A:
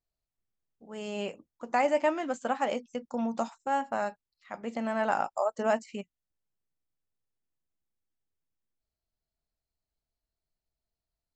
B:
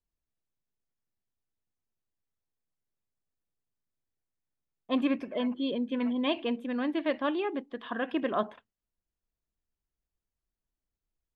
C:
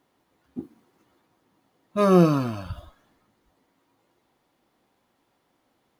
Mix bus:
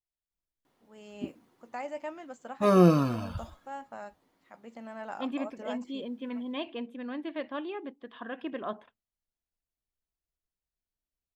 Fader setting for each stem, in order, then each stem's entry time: -12.0, -6.5, -3.0 dB; 0.00, 0.30, 0.65 s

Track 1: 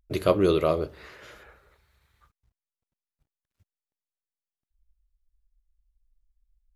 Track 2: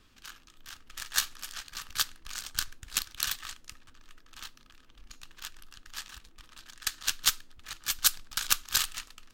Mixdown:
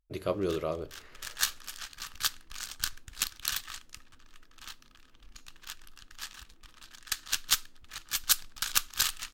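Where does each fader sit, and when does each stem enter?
-9.5, -1.0 dB; 0.00, 0.25 s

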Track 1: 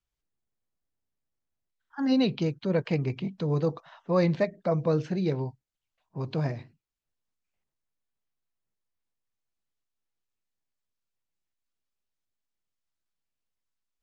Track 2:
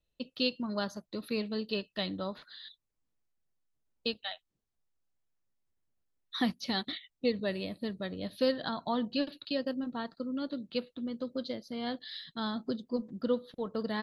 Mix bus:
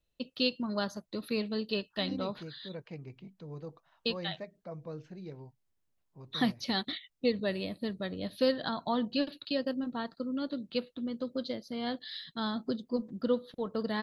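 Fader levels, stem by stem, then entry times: -17.0, +1.0 dB; 0.00, 0.00 s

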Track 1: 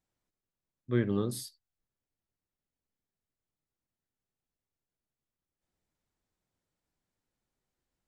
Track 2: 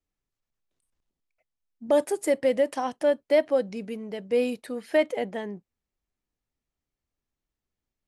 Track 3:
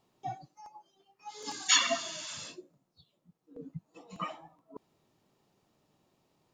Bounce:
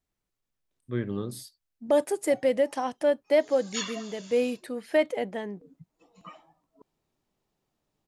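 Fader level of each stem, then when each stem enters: -2.0, -1.0, -9.0 dB; 0.00, 0.00, 2.05 s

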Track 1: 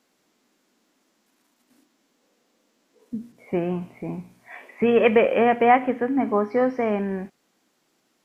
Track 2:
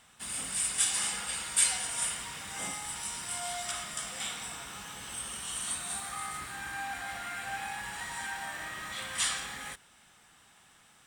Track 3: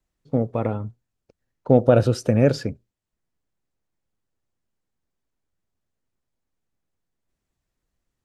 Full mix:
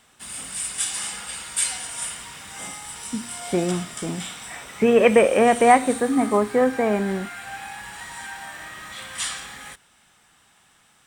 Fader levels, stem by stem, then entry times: +2.0 dB, +2.0 dB, off; 0.00 s, 0.00 s, off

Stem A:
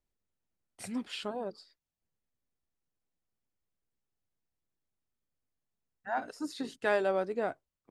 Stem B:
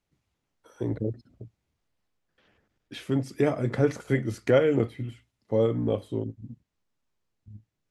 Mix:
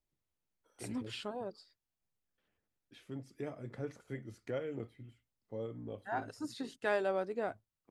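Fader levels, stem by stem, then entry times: -4.0, -18.0 dB; 0.00, 0.00 s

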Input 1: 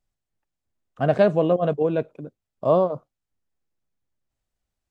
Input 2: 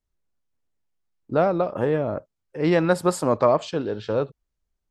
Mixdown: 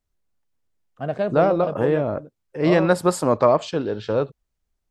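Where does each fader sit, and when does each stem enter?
-6.5, +2.0 dB; 0.00, 0.00 s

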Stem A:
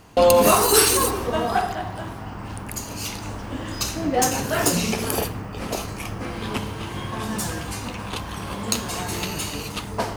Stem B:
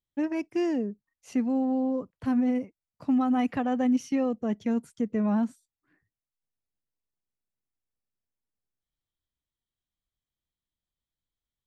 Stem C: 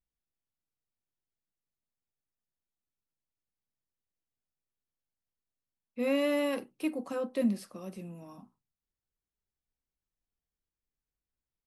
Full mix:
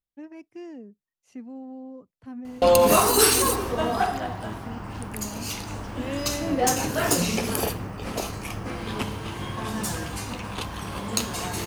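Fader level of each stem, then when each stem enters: -2.0, -13.0, -4.5 dB; 2.45, 0.00, 0.00 s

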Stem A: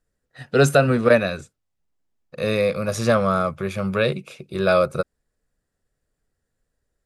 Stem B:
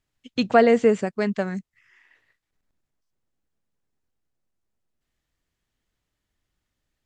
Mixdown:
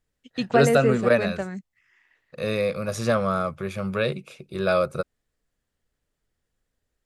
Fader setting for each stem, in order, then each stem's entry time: -4.0, -4.5 dB; 0.00, 0.00 s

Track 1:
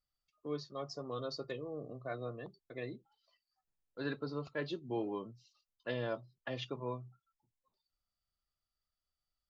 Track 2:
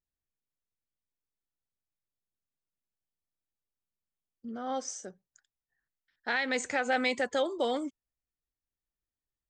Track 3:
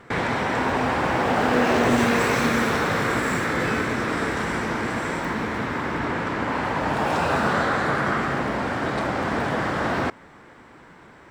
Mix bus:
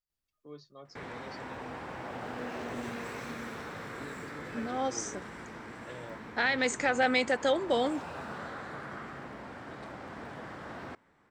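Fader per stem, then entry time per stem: -8.5, +2.0, -19.0 dB; 0.00, 0.10, 0.85 s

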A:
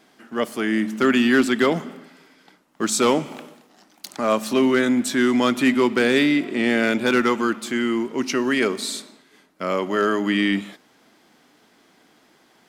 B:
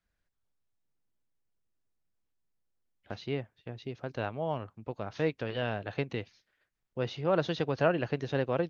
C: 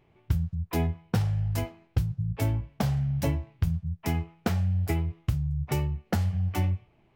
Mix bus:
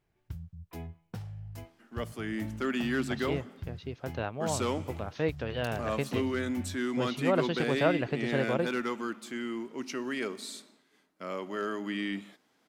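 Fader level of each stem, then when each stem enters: -13.5, 0.0, -15.0 dB; 1.60, 0.00, 0.00 s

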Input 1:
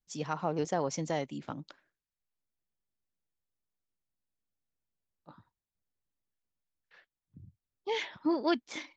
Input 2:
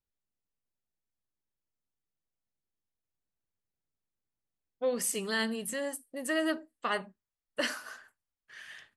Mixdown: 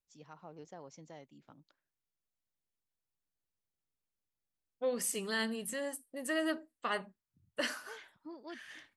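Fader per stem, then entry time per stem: -19.0, -3.5 dB; 0.00, 0.00 s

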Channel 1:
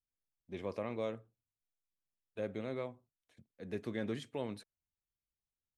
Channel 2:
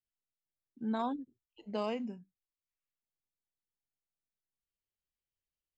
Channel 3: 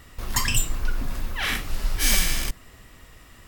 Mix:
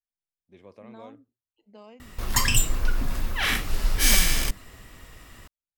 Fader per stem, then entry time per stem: -9.0, -13.0, +1.5 dB; 0.00, 0.00, 2.00 s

